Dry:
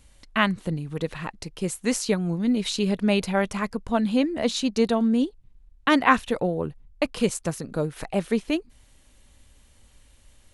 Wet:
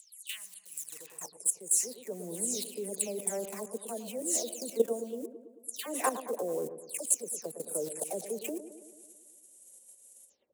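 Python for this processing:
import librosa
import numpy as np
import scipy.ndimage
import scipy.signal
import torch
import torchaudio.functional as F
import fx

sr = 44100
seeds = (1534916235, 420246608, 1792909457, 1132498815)

p1 = fx.spec_delay(x, sr, highs='early', ms=239)
p2 = np.where(np.abs(p1) >= 10.0 ** (-32.0 / 20.0), p1, 0.0)
p3 = p1 + F.gain(torch.from_numpy(p2), -8.5).numpy()
p4 = fx.level_steps(p3, sr, step_db=15)
p5 = fx.curve_eq(p4, sr, hz=(220.0, 440.0, 1300.0, 4300.0, 7700.0), db=(0, -4, -19, -8, 15))
p6 = fx.echo_wet_lowpass(p5, sr, ms=110, feedback_pct=61, hz=1100.0, wet_db=-10.5)
p7 = fx.filter_sweep_highpass(p6, sr, from_hz=2800.0, to_hz=510.0, start_s=0.71, end_s=1.33, q=1.8)
p8 = fx.rider(p7, sr, range_db=5, speed_s=0.5)
y = F.gain(torch.from_numpy(p8), -4.0).numpy()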